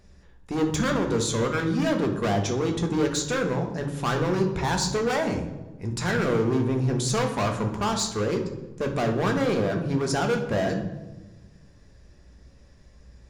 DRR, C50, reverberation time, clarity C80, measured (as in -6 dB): 3.0 dB, 7.5 dB, 1.2 s, 10.5 dB